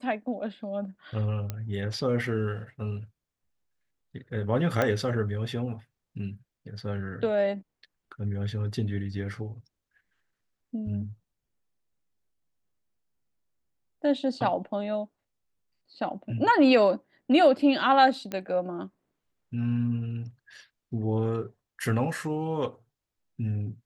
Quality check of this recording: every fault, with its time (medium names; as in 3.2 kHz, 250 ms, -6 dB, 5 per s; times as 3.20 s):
1.50 s: pop -18 dBFS
4.82 s: pop -12 dBFS
18.32 s: pop -19 dBFS